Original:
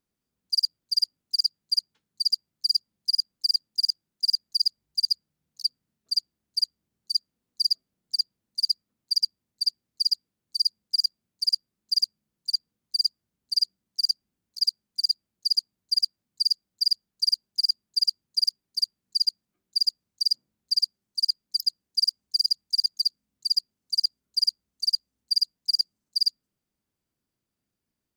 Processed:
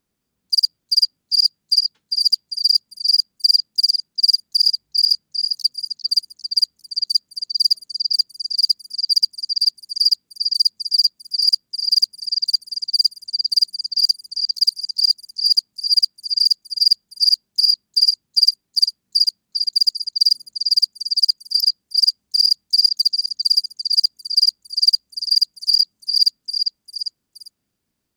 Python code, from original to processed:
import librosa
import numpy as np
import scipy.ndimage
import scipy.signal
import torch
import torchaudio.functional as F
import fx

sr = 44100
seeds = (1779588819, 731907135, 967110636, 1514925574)

y = fx.echo_stepped(x, sr, ms=399, hz=4000.0, octaves=0.7, feedback_pct=70, wet_db=-5.0)
y = y * 10.0 ** (7.5 / 20.0)